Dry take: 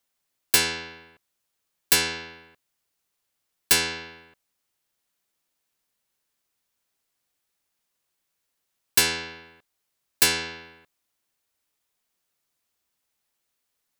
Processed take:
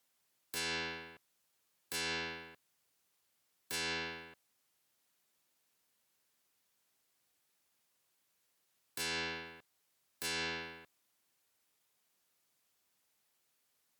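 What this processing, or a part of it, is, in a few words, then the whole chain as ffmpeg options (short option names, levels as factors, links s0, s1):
podcast mastering chain: -af "highpass=86,deesser=0.3,acompressor=threshold=0.0251:ratio=3,alimiter=limit=0.0668:level=0:latency=1:release=210,volume=1.12" -ar 48000 -c:a libmp3lame -b:a 112k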